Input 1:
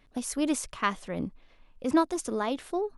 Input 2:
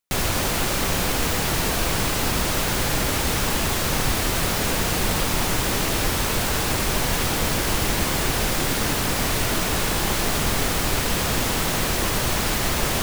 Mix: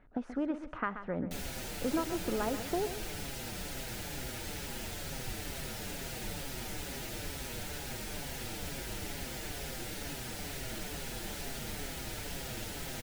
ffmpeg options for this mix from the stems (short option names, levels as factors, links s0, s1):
-filter_complex "[0:a]acompressor=threshold=0.0251:ratio=4,lowpass=f=1300:t=q:w=2.2,volume=1.06,asplit=2[s0][s1];[s1]volume=0.282[s2];[1:a]asplit=2[s3][s4];[s4]adelay=6,afreqshift=-2.2[s5];[s3][s5]amix=inputs=2:normalize=1,adelay=1200,volume=0.188[s6];[s2]aecho=0:1:131|262|393|524:1|0.26|0.0676|0.0176[s7];[s0][s6][s7]amix=inputs=3:normalize=0,equalizer=f=1100:t=o:w=0.26:g=-13.5"